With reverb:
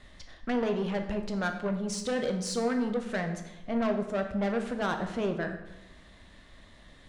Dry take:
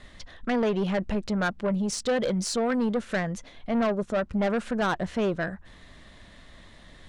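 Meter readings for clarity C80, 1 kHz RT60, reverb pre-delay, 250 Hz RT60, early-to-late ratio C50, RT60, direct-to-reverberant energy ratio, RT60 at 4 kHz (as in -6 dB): 10.5 dB, 0.90 s, 9 ms, 1.0 s, 8.0 dB, 0.95 s, 5.0 dB, 0.75 s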